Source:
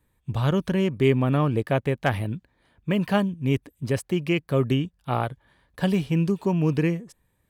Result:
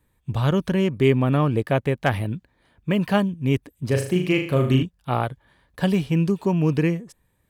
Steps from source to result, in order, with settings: 3.86–4.83 s: flutter echo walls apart 6.6 m, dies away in 0.48 s; trim +2 dB

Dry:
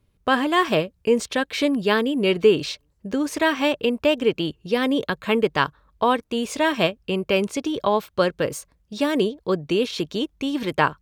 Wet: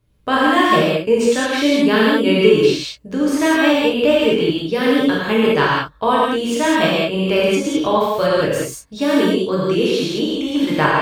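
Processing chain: gated-style reverb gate 230 ms flat, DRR -6.5 dB; trim -1.5 dB

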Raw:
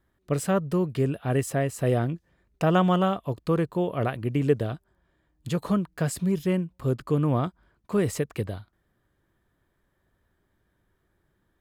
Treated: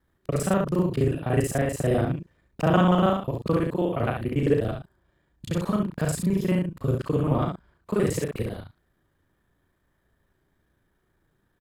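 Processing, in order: time reversed locally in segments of 36 ms; early reflections 35 ms -7.5 dB, 67 ms -5 dB

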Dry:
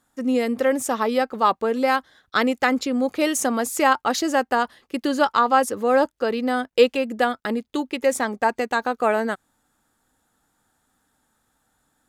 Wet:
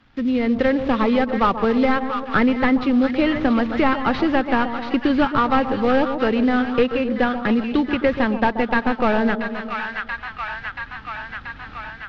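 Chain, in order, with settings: CVSD coder 32 kbps; peaking EQ 620 Hz -13 dB 3 oct; level rider gain up to 16.5 dB; 1.00–2.47 s: hard clipper -7.5 dBFS, distortion -27 dB; distance through air 470 m; two-band feedback delay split 1.1 kHz, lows 131 ms, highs 682 ms, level -10 dB; three bands compressed up and down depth 70%

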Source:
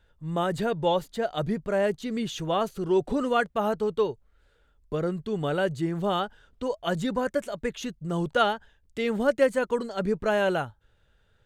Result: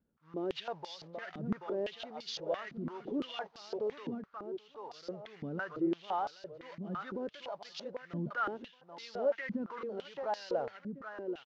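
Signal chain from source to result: CVSD coder 32 kbps; on a send: feedback delay 782 ms, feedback 22%, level -9.5 dB; on the sum: peak limiter -18.5 dBFS, peak gain reduction 8.5 dB; transient shaper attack -3 dB, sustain +7 dB; step-sequenced band-pass 5.9 Hz 230–4700 Hz; trim +1 dB

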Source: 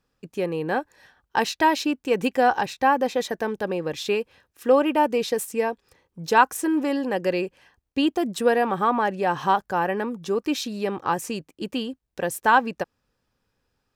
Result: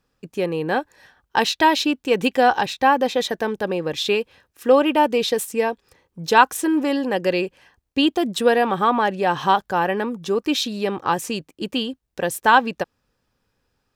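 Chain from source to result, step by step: dynamic bell 3.5 kHz, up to +7 dB, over -46 dBFS, Q 2.1; trim +3 dB

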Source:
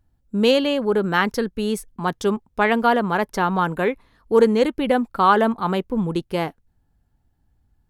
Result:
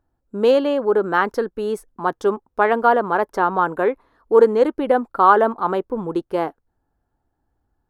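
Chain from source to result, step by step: high-order bell 680 Hz +11.5 dB 2.8 oct; trim -8.5 dB

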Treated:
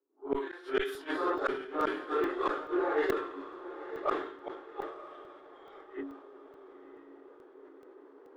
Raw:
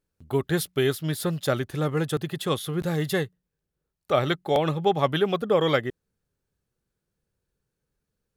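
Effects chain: phase randomisation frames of 200 ms; rippled Chebyshev high-pass 270 Hz, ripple 9 dB; tilt shelf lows -6 dB, about 660 Hz; level-controlled noise filter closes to 370 Hz, open at -22.5 dBFS; reverse; upward compressor, threshold -31 dBFS; reverse; inverted gate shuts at -24 dBFS, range -39 dB; Chebyshev shaper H 2 -25 dB, 8 -34 dB, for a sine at -23 dBFS; on a send: echo that smears into a reverb 983 ms, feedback 45%, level -12 dB; on the sum: crackling interface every 0.43 s, samples 64, zero, from 0.95 s; decay stretcher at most 82 dB/s; trim +6.5 dB

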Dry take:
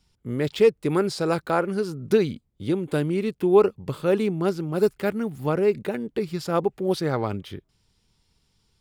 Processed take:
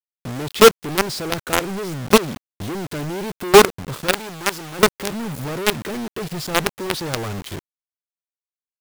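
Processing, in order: companded quantiser 2-bit; 4.13–4.79 s: bass shelf 480 Hz -11 dB; trim -1 dB

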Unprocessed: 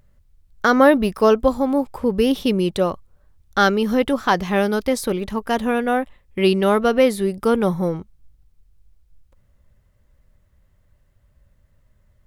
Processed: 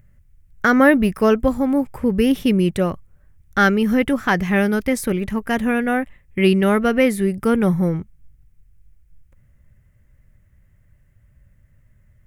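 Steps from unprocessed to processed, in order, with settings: graphic EQ 125/500/1000/2000/4000 Hz +6/-4/-7/+7/-11 dB; trim +2.5 dB

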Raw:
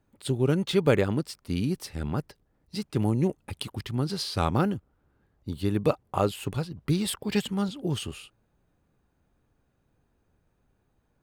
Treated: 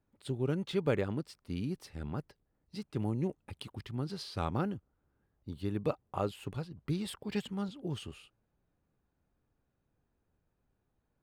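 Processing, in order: treble shelf 5.5 kHz -8 dB; trim -8.5 dB

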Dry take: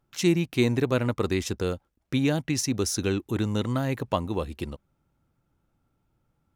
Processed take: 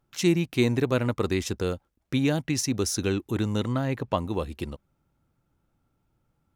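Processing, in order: 3.68–4.18 s: treble shelf 7.4 kHz -11.5 dB

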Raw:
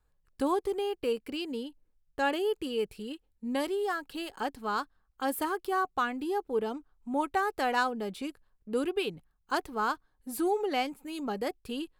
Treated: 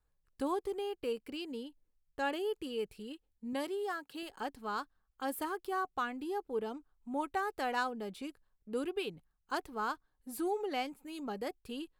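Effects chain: 3.53–4.23 s: high-pass 110 Hz 12 dB/octave; trim -6 dB

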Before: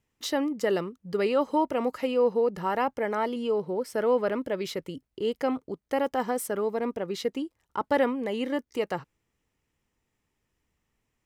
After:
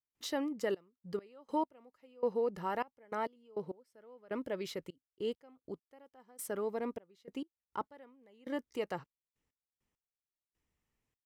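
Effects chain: trance gate ".xxxx..x..x..." 101 bpm -24 dB; trim -8 dB

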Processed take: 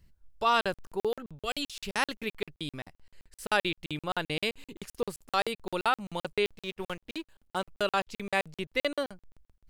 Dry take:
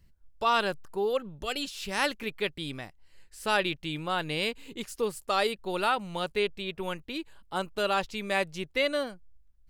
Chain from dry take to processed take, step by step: 6.46–7.66 s: companding laws mixed up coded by A; crackling interface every 0.13 s, samples 2048, zero, from 0.61 s

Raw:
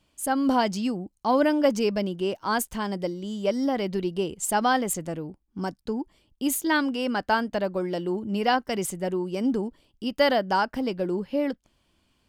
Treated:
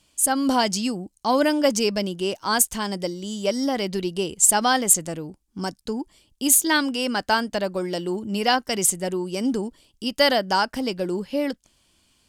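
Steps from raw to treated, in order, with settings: peaking EQ 8.2 kHz +13 dB 2.2 oct; trim +1 dB

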